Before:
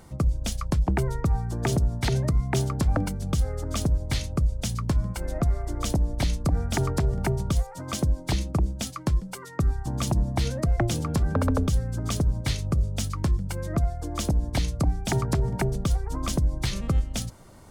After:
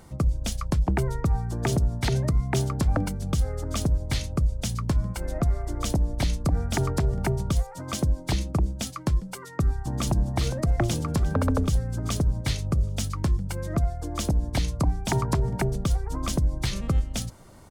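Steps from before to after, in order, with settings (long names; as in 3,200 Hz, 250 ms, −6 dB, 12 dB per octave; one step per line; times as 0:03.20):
0:09.51–0:10.12: delay throw 410 ms, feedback 65%, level −10 dB
0:14.69–0:15.39: parametric band 1,000 Hz +10 dB 0.22 octaves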